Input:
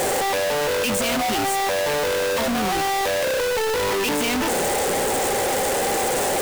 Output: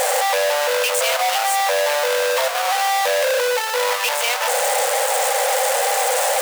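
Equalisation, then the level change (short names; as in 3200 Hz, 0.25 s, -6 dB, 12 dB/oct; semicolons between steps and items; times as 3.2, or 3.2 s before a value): brick-wall FIR high-pass 470 Hz; +4.0 dB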